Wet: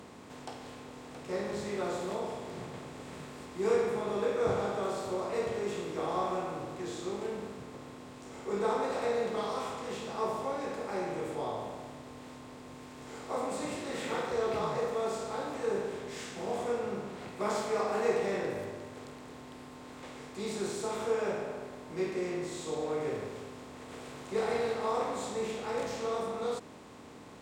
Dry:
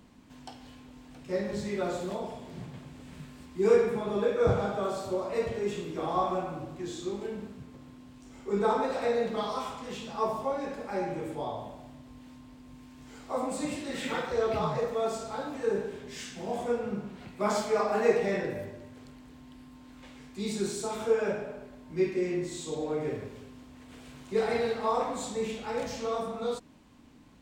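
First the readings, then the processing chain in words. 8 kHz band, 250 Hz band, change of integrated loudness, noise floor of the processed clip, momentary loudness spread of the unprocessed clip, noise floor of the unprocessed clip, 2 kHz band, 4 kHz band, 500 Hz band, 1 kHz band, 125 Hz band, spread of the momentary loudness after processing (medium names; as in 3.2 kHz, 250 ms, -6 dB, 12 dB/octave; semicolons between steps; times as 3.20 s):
-1.5 dB, -4.0 dB, -3.5 dB, -49 dBFS, 22 LU, -52 dBFS, -2.0 dB, -1.5 dB, -3.0 dB, -2.0 dB, -5.0 dB, 16 LU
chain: spectral levelling over time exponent 0.6; high-pass 160 Hz 6 dB/octave; trim -7 dB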